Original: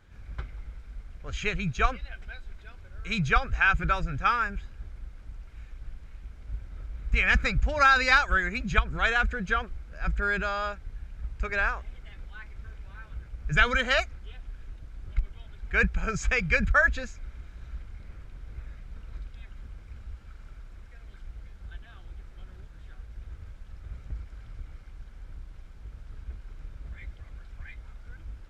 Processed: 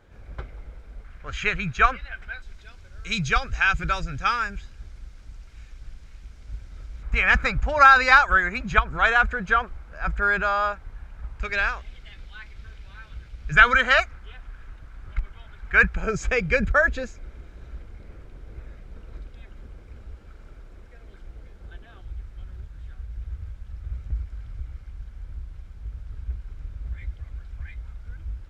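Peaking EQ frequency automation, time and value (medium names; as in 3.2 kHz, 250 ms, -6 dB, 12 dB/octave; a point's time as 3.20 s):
peaking EQ +9.5 dB 1.7 oct
520 Hz
from 1.04 s 1.5 kHz
from 2.42 s 5.8 kHz
from 7.03 s 990 Hz
from 11.42 s 3.9 kHz
from 13.53 s 1.3 kHz
from 15.96 s 420 Hz
from 22.01 s 65 Hz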